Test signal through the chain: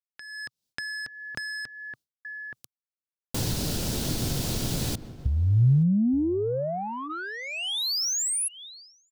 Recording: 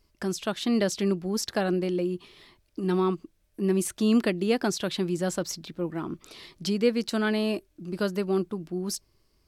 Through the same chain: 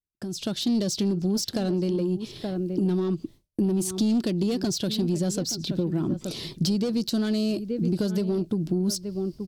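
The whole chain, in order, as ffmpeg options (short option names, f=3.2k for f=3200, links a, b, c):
-filter_complex "[0:a]asplit=2[a][b];[b]adelay=874.6,volume=-16dB,highshelf=f=4k:g=-19.7[c];[a][c]amix=inputs=2:normalize=0,adynamicequalizer=threshold=0.00447:dfrequency=4600:dqfactor=1.3:tfrequency=4600:tqfactor=1.3:attack=5:release=100:ratio=0.375:range=4:mode=boostabove:tftype=bell,bandreject=f=1.2k:w=12,agate=range=-33dB:threshold=-48dB:ratio=3:detection=peak,asoftclip=type=tanh:threshold=-23dB,acompressor=threshold=-37dB:ratio=12,equalizer=f=125:t=o:w=1:g=9,equalizer=f=250:t=o:w=1:g=3,equalizer=f=1k:t=o:w=1:g=-6,equalizer=f=2k:t=o:w=1:g=-9,dynaudnorm=f=140:g=5:m=14.5dB,volume=-3dB"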